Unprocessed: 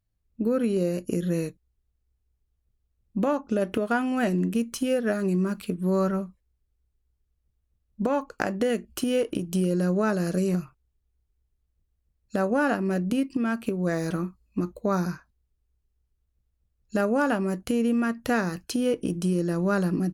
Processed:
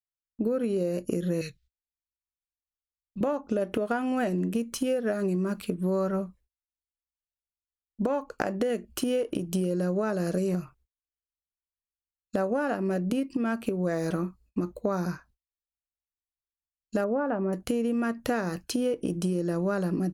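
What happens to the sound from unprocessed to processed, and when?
0:01.41–0:03.21: drawn EQ curve 140 Hz 0 dB, 280 Hz −19 dB, 440 Hz −11 dB, 840 Hz −22 dB, 1,400 Hz +2 dB, 4,100 Hz +12 dB, 10,000 Hz −2 dB
0:17.04–0:17.53: low-pass filter 1,500 Hz
whole clip: noise gate −56 dBFS, range −35 dB; dynamic equaliser 560 Hz, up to +5 dB, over −38 dBFS, Q 0.94; downward compressor, threshold −24 dBFS

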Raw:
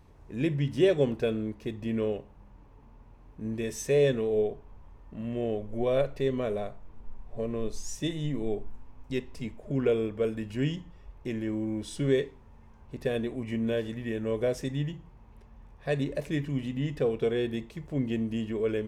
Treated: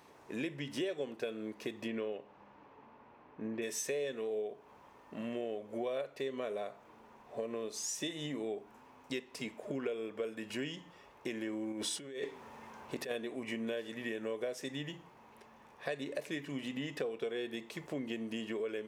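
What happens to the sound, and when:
0:01.87–0:03.61: low-pass filter 4,900 Hz → 2,300 Hz
0:11.72–0:13.11: compressor whose output falls as the input rises −37 dBFS
whole clip: high-pass filter 240 Hz 12 dB per octave; low-shelf EQ 430 Hz −8.5 dB; downward compressor 5 to 1, threshold −43 dBFS; level +7 dB

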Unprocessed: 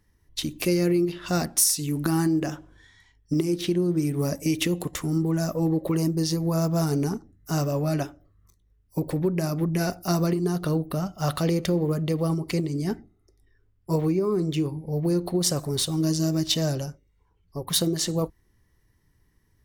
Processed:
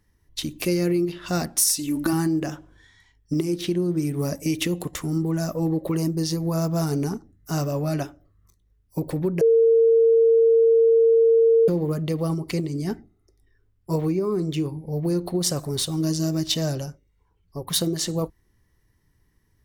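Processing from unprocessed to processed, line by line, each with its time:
0:01.67–0:02.13: comb filter 3.4 ms
0:09.41–0:11.68: beep over 456 Hz −13 dBFS

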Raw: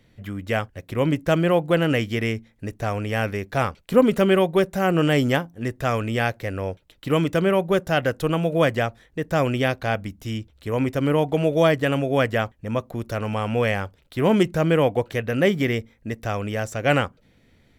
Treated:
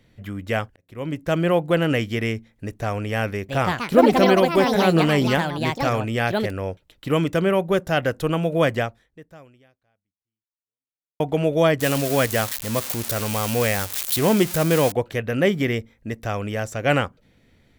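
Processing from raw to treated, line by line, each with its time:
0:00.76–0:01.48: fade in
0:03.31–0:07.34: delay with pitch and tempo change per echo 177 ms, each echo +5 semitones, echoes 2
0:08.80–0:11.20: fade out exponential
0:11.80–0:14.92: spike at every zero crossing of −14 dBFS

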